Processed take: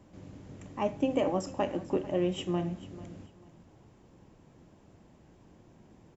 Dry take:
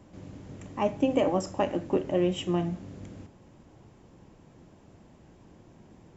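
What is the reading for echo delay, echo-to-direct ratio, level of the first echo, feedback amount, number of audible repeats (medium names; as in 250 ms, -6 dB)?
443 ms, -17.5 dB, -18.0 dB, 26%, 2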